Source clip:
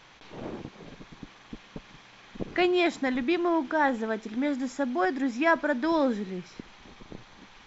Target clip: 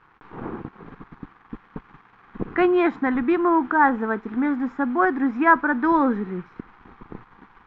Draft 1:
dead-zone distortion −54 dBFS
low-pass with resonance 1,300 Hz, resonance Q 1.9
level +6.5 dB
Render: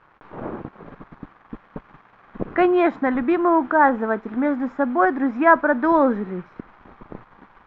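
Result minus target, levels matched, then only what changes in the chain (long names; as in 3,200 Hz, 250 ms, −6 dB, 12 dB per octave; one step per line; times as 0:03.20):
500 Hz band +2.5 dB
add after low-pass with resonance: parametric band 600 Hz −14.5 dB 0.33 octaves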